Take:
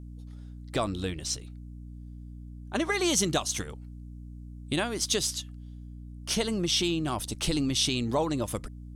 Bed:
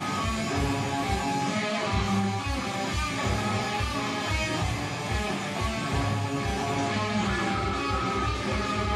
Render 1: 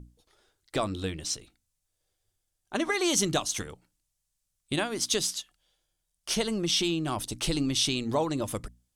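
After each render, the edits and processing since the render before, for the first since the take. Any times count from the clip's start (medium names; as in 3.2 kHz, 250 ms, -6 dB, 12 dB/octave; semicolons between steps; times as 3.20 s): hum notches 60/120/180/240/300 Hz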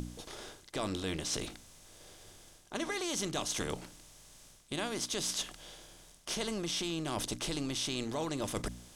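spectral levelling over time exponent 0.6; reverse; compression, threshold -33 dBFS, peak gain reduction 13.5 dB; reverse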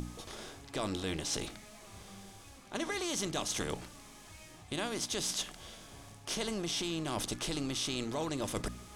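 add bed -27 dB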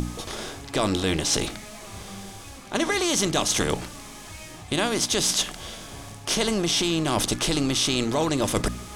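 trim +12 dB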